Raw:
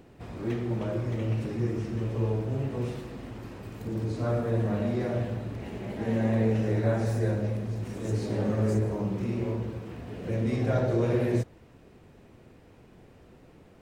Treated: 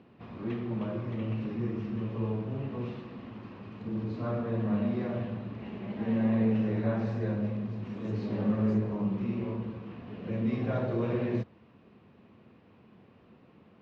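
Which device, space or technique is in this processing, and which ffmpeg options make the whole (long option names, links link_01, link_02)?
guitar cabinet: -af "highpass=100,equalizer=frequency=100:width_type=q:width=4:gain=3,equalizer=frequency=210:width_type=q:width=4:gain=9,equalizer=frequency=1100:width_type=q:width=4:gain=7,equalizer=frequency=2700:width_type=q:width=4:gain=4,lowpass=frequency=4300:width=0.5412,lowpass=frequency=4300:width=1.3066,volume=-5.5dB"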